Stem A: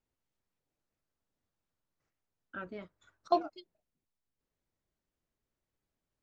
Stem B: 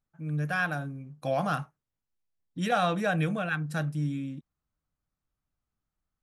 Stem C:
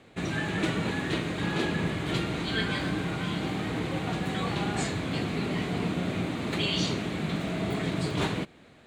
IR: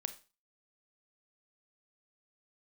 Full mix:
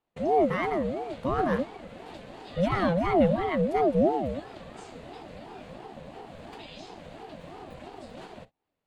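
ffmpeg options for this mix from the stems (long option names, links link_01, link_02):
-filter_complex "[0:a]adelay=500,volume=-16.5dB[link_01];[1:a]bass=frequency=250:gain=9,treble=frequency=4000:gain=-8,volume=-0.5dB[link_02];[2:a]bandreject=frequency=109.9:width_type=h:width=4,bandreject=frequency=219.8:width_type=h:width=4,bandreject=frequency=329.7:width_type=h:width=4,bandreject=frequency=439.6:width_type=h:width=4,acompressor=threshold=-39dB:ratio=6,volume=-2dB[link_03];[link_01][link_02][link_03]amix=inputs=3:normalize=0,agate=range=-26dB:threshold=-48dB:ratio=16:detection=peak,lowshelf=frequency=200:gain=5.5,aeval=exprs='val(0)*sin(2*PI*470*n/s+470*0.3/2.9*sin(2*PI*2.9*n/s))':channel_layout=same"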